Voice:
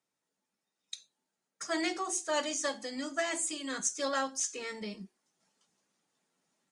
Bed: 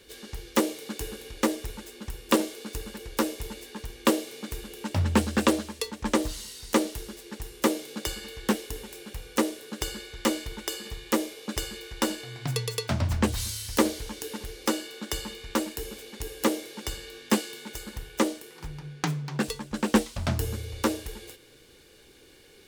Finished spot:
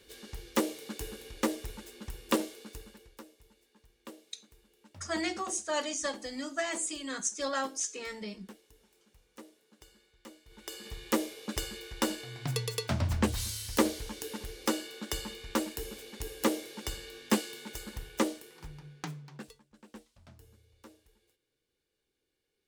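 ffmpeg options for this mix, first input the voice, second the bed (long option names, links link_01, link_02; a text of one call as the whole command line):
ffmpeg -i stem1.wav -i stem2.wav -filter_complex "[0:a]adelay=3400,volume=-0.5dB[link_01];[1:a]volume=17dB,afade=type=out:start_time=2.24:duration=0.99:silence=0.0944061,afade=type=in:start_time=10.45:duration=0.58:silence=0.0794328,afade=type=out:start_time=18.06:duration=1.57:silence=0.0562341[link_02];[link_01][link_02]amix=inputs=2:normalize=0" out.wav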